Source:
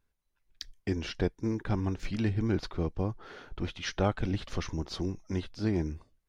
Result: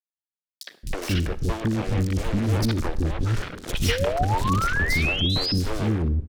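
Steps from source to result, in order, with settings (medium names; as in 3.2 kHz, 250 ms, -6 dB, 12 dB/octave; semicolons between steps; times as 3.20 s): bass shelf 200 Hz +9.5 dB; 2.53–3.02 s: comb 3.3 ms, depth 75%; dynamic bell 1.1 kHz, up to -3 dB, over -48 dBFS, Q 0.89; in parallel at -2 dB: compression, threshold -33 dBFS, peak gain reduction 14.5 dB; on the sum: fuzz box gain 41 dB, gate -40 dBFS; 3.82–5.54 s: painted sound rise 450–5400 Hz -17 dBFS; rotary cabinet horn 6.7 Hz; three bands offset in time highs, mids, lows 60/220 ms, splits 390/4100 Hz; reverberation RT60 0.70 s, pre-delay 33 ms, DRR 17 dB; trim -5.5 dB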